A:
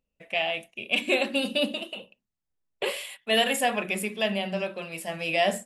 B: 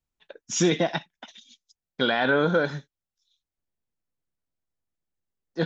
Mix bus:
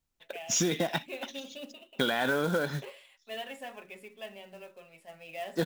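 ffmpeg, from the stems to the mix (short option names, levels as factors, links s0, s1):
-filter_complex "[0:a]highpass=f=230:p=1,aemphasis=mode=reproduction:type=75fm,aecho=1:1:7.4:0.49,volume=0.141[s0];[1:a]acontrast=58,volume=0.631[s1];[s0][s1]amix=inputs=2:normalize=0,highshelf=f=3800:g=2.5,acrusher=bits=4:mode=log:mix=0:aa=0.000001,acompressor=threshold=0.0562:ratio=6"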